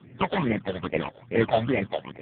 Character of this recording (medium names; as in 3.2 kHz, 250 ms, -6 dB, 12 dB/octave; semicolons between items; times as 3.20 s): aliases and images of a low sample rate 1.5 kHz, jitter 20%; phasing stages 8, 2.4 Hz, lowest notch 290–1100 Hz; AMR-NB